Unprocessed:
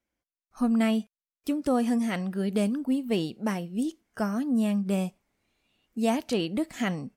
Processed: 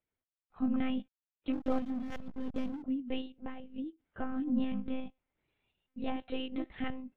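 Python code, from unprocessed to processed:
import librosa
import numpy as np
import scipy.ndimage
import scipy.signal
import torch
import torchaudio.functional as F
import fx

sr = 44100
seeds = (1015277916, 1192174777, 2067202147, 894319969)

y = fx.lpc_monotone(x, sr, seeds[0], pitch_hz=260.0, order=16)
y = fx.tremolo_random(y, sr, seeds[1], hz=2.8, depth_pct=55)
y = fx.backlash(y, sr, play_db=-31.5, at=(1.53, 2.83))
y = y * librosa.db_to_amplitude(-5.0)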